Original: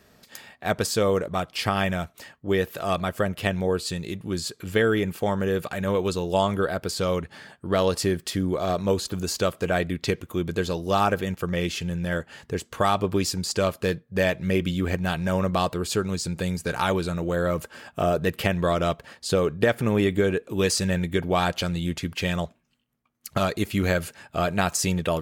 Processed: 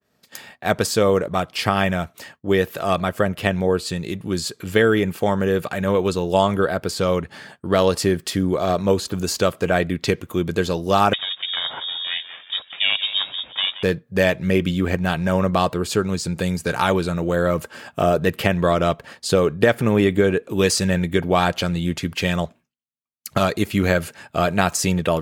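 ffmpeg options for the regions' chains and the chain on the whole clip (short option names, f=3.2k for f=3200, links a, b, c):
-filter_complex "[0:a]asettb=1/sr,asplit=3[a][b][c];[a]atrim=end=11.134[d];[b]atrim=start=11.13:end=13.83,asetpts=PTS-STARTPTS,afade=t=in:d=0.004:c=qsin,afade=t=out:st=2.696:d=0.004:c=qsin,aeval=exprs='val(0)*sin(2*PI*290*n/s)':c=same,asplit=4[e][f][g][h];[f]adelay=176,afreqshift=66,volume=-13.5dB[i];[g]adelay=352,afreqshift=132,volume=-22.4dB[j];[h]adelay=528,afreqshift=198,volume=-31.2dB[k];[e][i][j][k]amix=inputs=4:normalize=0,atrim=end_sample=119070,lowpass=f=3.2k:t=q:w=0.5098,lowpass=f=3.2k:t=q:w=0.6013,lowpass=f=3.2k:t=q:w=0.9,lowpass=f=3.2k:t=q:w=2.563,afreqshift=-3800[l];[c]atrim=start=13.826[m];[d][l]acrossfade=d=0.004:c1=hsin:c2=qsin[n];[n][m]acrossfade=d=0.004:c1=qsin:c2=hsin,agate=range=-33dB:threshold=-46dB:ratio=3:detection=peak,highpass=81,adynamicequalizer=threshold=0.01:dfrequency=3000:dqfactor=0.7:tfrequency=3000:tqfactor=0.7:attack=5:release=100:ratio=0.375:range=2:mode=cutabove:tftype=highshelf,volume=5dB"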